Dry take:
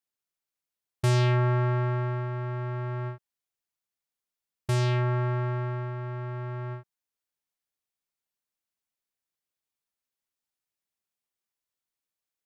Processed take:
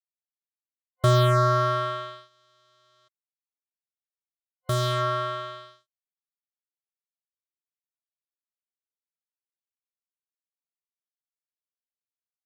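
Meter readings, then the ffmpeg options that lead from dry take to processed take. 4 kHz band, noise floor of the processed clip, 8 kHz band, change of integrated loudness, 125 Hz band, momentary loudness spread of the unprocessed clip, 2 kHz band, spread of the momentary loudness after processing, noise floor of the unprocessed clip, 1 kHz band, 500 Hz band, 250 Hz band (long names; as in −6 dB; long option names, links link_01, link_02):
+7.0 dB, below −85 dBFS, +3.5 dB, +4.5 dB, −2.0 dB, 13 LU, +0.5 dB, 17 LU, below −85 dBFS, +7.5 dB, +4.5 dB, can't be measured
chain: -af "acrusher=bits=3:mix=0:aa=0.5,superequalizer=8b=2.82:9b=0.282:10b=3.16:12b=0.398:13b=2"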